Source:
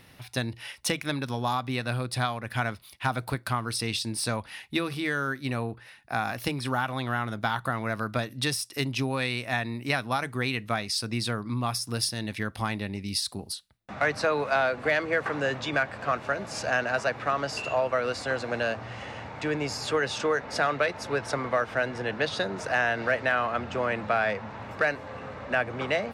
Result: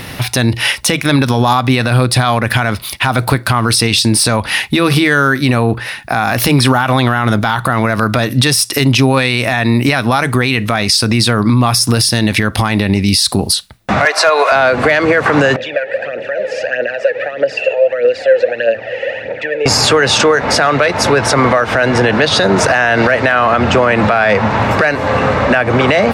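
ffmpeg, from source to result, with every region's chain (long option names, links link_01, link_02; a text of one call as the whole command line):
ffmpeg -i in.wav -filter_complex "[0:a]asettb=1/sr,asplit=3[link_01][link_02][link_03];[link_01]atrim=end=14.054[link_04];[link_02]atrim=start=14.05:end=14.52,asetpts=PTS-STARTPTS,afade=type=in:duration=0.004:curve=qsin,afade=type=out:start_time=0.466:duration=0.004:curve=qsin,highpass=frequency=510:width=0.5412,highpass=frequency=510:width=1.3066,aecho=1:1:2.9:0.46,atrim=end_sample=20727,volume=16.5dB,asoftclip=hard,volume=-16.5dB[link_05];[link_03]atrim=start=14.516[link_06];[link_04][link_05]acrossfade=duration=0.004:curve1=hsin:curve2=qsin[link_07];[link_07][link_06]acrossfade=duration=0.004:curve1=qsin:curve2=hsin,asettb=1/sr,asplit=3[link_08][link_09][link_10];[link_08]atrim=end=15.564[link_11];[link_09]atrim=start=15.56:end=19.66,asetpts=PTS-STARTPTS,afade=type=in:duration=0.004:curve=qsin,afade=type=out:start_time=4.096:duration=0.004:curve=qsin,acompressor=threshold=-31dB:ratio=4:attack=3.2:release=140:knee=1:detection=peak,aphaser=in_gain=1:out_gain=1:delay=2.4:decay=0.6:speed=1.6:type=triangular,asplit=3[link_12][link_13][link_14];[link_12]bandpass=frequency=530:width_type=q:width=8,volume=0dB[link_15];[link_13]bandpass=frequency=1840:width_type=q:width=8,volume=-6dB[link_16];[link_14]bandpass=frequency=2480:width_type=q:width=8,volume=-9dB[link_17];[link_15][link_16][link_17]amix=inputs=3:normalize=0[link_18];[link_10]atrim=start=19.656[link_19];[link_11][link_18]acrossfade=duration=0.004:curve1=hsin:curve2=qsin[link_20];[link_20][link_19]acrossfade=duration=0.004:curve1=qsin:curve2=hsin,acompressor=threshold=-29dB:ratio=6,alimiter=level_in=27.5dB:limit=-1dB:release=50:level=0:latency=1,volume=-1dB" out.wav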